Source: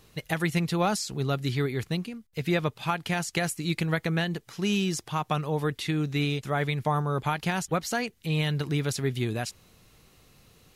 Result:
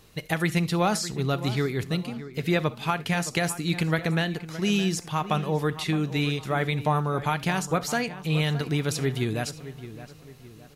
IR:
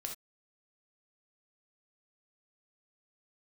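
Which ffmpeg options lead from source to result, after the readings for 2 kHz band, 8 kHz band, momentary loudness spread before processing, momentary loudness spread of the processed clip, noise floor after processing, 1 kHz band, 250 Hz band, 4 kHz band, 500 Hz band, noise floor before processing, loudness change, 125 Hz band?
+2.0 dB, +2.0 dB, 4 LU, 6 LU, -48 dBFS, +2.0 dB, +2.0 dB, +2.0 dB, +2.0 dB, -60 dBFS, +2.0 dB, +1.5 dB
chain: -filter_complex "[0:a]asplit=2[a][b];[b]adelay=617,lowpass=f=2.5k:p=1,volume=-13.5dB,asplit=2[c][d];[d]adelay=617,lowpass=f=2.5k:p=1,volume=0.42,asplit=2[e][f];[f]adelay=617,lowpass=f=2.5k:p=1,volume=0.42,asplit=2[g][h];[h]adelay=617,lowpass=f=2.5k:p=1,volume=0.42[i];[a][c][e][g][i]amix=inputs=5:normalize=0,asplit=2[j][k];[1:a]atrim=start_sample=2205[l];[k][l]afir=irnorm=-1:irlink=0,volume=-9dB[m];[j][m]amix=inputs=2:normalize=0"

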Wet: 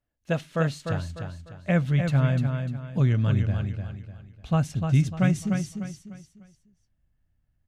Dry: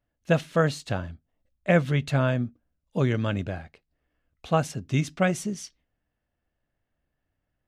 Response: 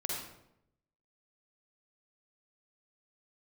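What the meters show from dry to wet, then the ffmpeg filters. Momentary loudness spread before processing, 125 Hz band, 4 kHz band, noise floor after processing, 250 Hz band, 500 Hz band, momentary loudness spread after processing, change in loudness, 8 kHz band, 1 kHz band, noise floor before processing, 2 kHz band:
12 LU, +4.5 dB, -3.5 dB, -73 dBFS, +1.5 dB, -5.0 dB, 15 LU, +1.0 dB, -3.5 dB, -4.5 dB, -81 dBFS, -3.5 dB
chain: -filter_complex "[0:a]asubboost=boost=5.5:cutoff=180,asplit=2[a][b];[b]aecho=0:1:299|598|897|1196:0.501|0.175|0.0614|0.0215[c];[a][c]amix=inputs=2:normalize=0,volume=-4.5dB"

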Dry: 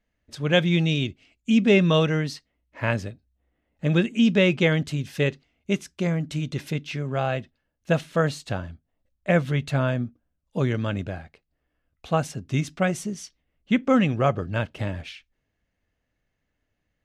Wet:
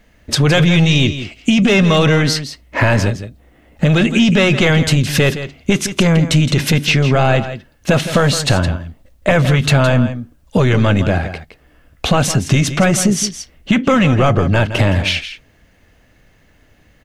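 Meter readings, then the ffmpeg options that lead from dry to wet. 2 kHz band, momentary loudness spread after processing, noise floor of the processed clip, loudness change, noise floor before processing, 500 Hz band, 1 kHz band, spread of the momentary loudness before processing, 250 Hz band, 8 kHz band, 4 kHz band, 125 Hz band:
+11.5 dB, 9 LU, -52 dBFS, +10.0 dB, -78 dBFS, +8.5 dB, +10.5 dB, 15 LU, +9.0 dB, +19.5 dB, +13.5 dB, +12.0 dB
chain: -filter_complex "[0:a]apsyclip=25dB,acompressor=threshold=-11dB:ratio=6,asplit=2[a][b];[b]aecho=0:1:165:0.266[c];[a][c]amix=inputs=2:normalize=0"

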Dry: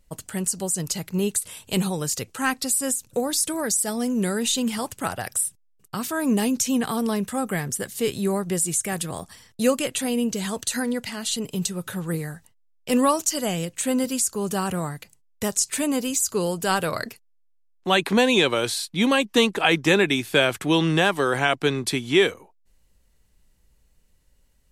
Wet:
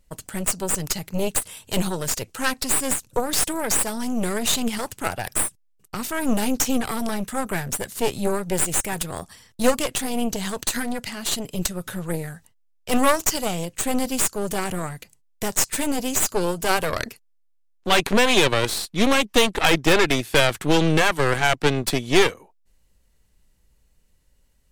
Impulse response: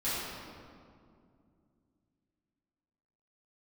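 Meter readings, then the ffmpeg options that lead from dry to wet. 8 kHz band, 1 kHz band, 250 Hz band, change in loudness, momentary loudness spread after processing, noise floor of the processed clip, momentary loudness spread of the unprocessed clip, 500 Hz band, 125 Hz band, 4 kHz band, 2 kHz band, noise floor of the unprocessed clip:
+0.5 dB, +2.0 dB, -1.0 dB, +1.0 dB, 11 LU, -61 dBFS, 10 LU, +0.5 dB, +1.0 dB, +1.5 dB, +1.5 dB, -61 dBFS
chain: -af "aeval=exprs='0.631*(cos(1*acos(clip(val(0)/0.631,-1,1)))-cos(1*PI/2))+0.112*(cos(8*acos(clip(val(0)/0.631,-1,1)))-cos(8*PI/2))':c=same"

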